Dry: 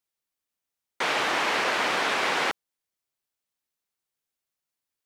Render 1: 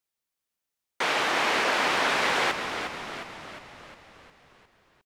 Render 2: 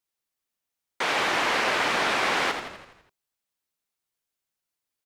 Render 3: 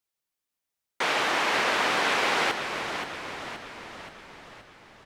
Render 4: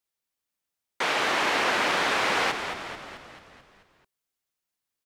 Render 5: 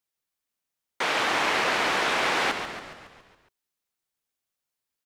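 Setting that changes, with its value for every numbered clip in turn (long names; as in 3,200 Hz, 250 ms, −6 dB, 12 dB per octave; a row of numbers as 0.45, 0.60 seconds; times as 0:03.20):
echo with shifted repeats, delay time: 357, 83, 525, 219, 139 milliseconds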